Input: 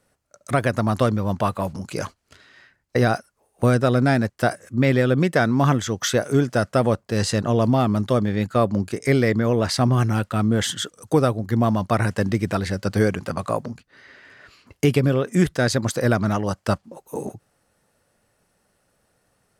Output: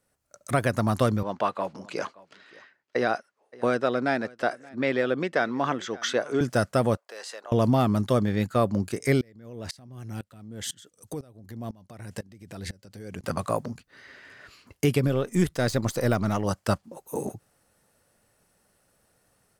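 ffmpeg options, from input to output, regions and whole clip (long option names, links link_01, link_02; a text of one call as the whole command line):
ffmpeg -i in.wav -filter_complex "[0:a]asettb=1/sr,asplit=3[link_01][link_02][link_03];[link_01]atrim=end=1.234[link_04];[link_02]atrim=start=1.23:end=6.41,asetpts=PTS-STARTPTS,afade=type=in:duration=0.004:curve=qsin,afade=type=out:start_time=5.176:duration=0.004:curve=qsin,highpass=320,lowpass=4100,aecho=1:1:574:0.0708,atrim=end_sample=228438[link_05];[link_03]atrim=start=6.406[link_06];[link_04][link_05]acrossfade=duration=0.004:curve1=hsin:curve2=qsin[link_07];[link_07][link_06]acrossfade=duration=0.004:curve1=qsin:curve2=hsin,asettb=1/sr,asplit=3[link_08][link_09][link_10];[link_08]atrim=end=6.974[link_11];[link_09]atrim=start=6.97:end=7.52,asetpts=PTS-STARTPTS,afade=type=in:duration=0.004:curve=qsin,afade=type=out:start_time=0.546:duration=0.004:curve=qsin,highpass=frequency=530:width=0.5412,highpass=frequency=530:width=1.3066,highshelf=frequency=4500:gain=-9.5,acompressor=threshold=-42dB:ratio=2:attack=3.2:release=140:knee=1:detection=peak[link_12];[link_10]atrim=start=7.516[link_13];[link_11][link_12]acrossfade=duration=0.004:curve1=hsin:curve2=qsin[link_14];[link_14][link_13]acrossfade=duration=0.004:curve1=qsin:curve2=hsin,asettb=1/sr,asplit=3[link_15][link_16][link_17];[link_15]atrim=end=9.214[link_18];[link_16]atrim=start=9.21:end=13.24,asetpts=PTS-STARTPTS,afade=type=in:duration=0.004:curve=qsin,afade=type=out:start_time=4.026:duration=0.004:curve=qsin,equalizer=frequency=1200:width_type=o:width=1.1:gain=-6.5,acompressor=threshold=-27dB:ratio=6:attack=3.2:release=140:knee=1:detection=peak,aeval=exprs='val(0)*pow(10,-23*if(lt(mod(-2*n/s,1),2*abs(-2)/1000),1-mod(-2*n/s,1)/(2*abs(-2)/1000),(mod(-2*n/s,1)-2*abs(-2)/1000)/(1-2*abs(-2)/1000))/20)':channel_layout=same[link_19];[link_17]atrim=start=13.236[link_20];[link_18][link_19]acrossfade=duration=0.004:curve1=hsin:curve2=qsin[link_21];[link_21][link_20]acrossfade=duration=0.004:curve1=qsin:curve2=hsin,asettb=1/sr,asplit=3[link_22][link_23][link_24];[link_22]atrim=end=15.074[link_25];[link_23]atrim=start=15.07:end=16.45,asetpts=PTS-STARTPTS,afade=type=in:duration=0.004:curve=qsin,afade=type=out:start_time=1.376:duration=0.004:curve=qsin,aeval=exprs='if(lt(val(0),0),0.708*val(0),val(0))':channel_layout=same,deesser=0.6,equalizer=frequency=1600:width_type=o:width=0.24:gain=-5[link_26];[link_24]atrim=start=16.446[link_27];[link_25][link_26]acrossfade=duration=0.004:curve1=hsin:curve2=qsin[link_28];[link_28][link_27]acrossfade=duration=0.004:curve1=qsin:curve2=hsin,highshelf=frequency=8800:gain=7.5,dynaudnorm=framelen=120:gausssize=3:maxgain=7.5dB,volume=-9dB" out.wav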